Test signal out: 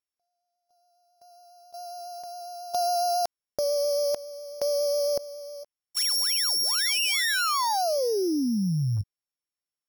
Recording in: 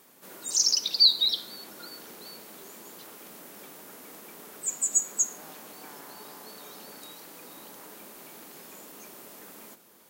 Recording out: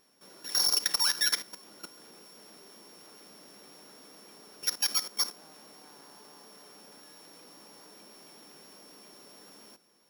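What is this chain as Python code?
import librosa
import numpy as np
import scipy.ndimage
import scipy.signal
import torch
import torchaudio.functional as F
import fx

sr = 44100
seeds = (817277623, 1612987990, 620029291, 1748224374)

y = np.r_[np.sort(x[:len(x) // 8 * 8].reshape(-1, 8), axis=1).ravel(), x[len(x) // 8 * 8:]]
y = fx.level_steps(y, sr, step_db=14)
y = fx.vibrato(y, sr, rate_hz=7.3, depth_cents=21.0)
y = F.gain(torch.from_numpy(y), 3.0).numpy()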